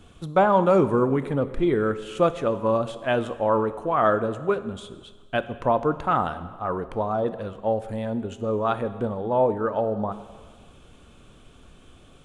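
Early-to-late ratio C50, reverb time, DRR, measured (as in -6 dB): 13.5 dB, 1.5 s, 11.5 dB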